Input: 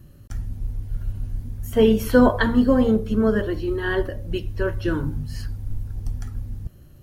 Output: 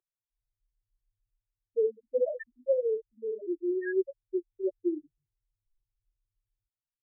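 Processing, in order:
0:02.20–0:03.14: comb filter 1.8 ms, depth 100%
automatic gain control gain up to 9.5 dB
spectral peaks only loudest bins 2
elliptic high-pass filter 350 Hz, stop band 50 dB
parametric band 710 Hz −2.5 dB
level −8 dB

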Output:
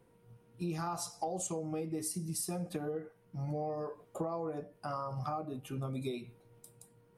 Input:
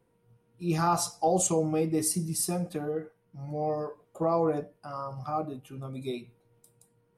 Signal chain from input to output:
downward compressor 12 to 1, threshold −38 dBFS, peak gain reduction 17.5 dB
level +4 dB

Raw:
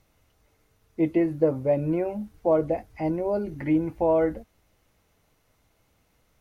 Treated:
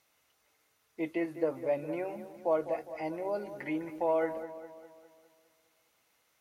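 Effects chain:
high-pass filter 1,200 Hz 6 dB per octave
on a send: delay with a low-pass on its return 204 ms, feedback 51%, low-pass 2,000 Hz, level −11.5 dB

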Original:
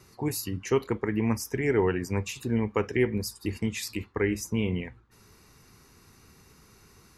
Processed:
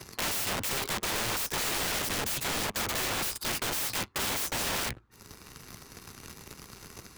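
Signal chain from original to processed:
leveller curve on the samples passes 3
wrap-around overflow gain 28.5 dB
multiband upward and downward compressor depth 40%
level +2.5 dB

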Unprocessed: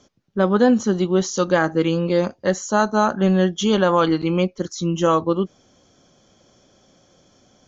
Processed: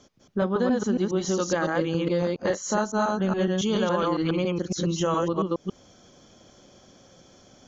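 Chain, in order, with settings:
delay that plays each chunk backwards 139 ms, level −0.5 dB
downward compressor 3 to 1, threshold −24 dBFS, peak gain reduction 12 dB

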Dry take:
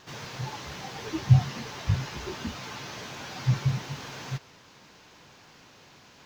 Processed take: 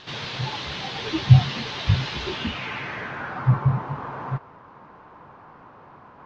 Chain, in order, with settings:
low-pass filter sweep 3,700 Hz → 1,100 Hz, 0:02.26–0:03.59
level +5.5 dB

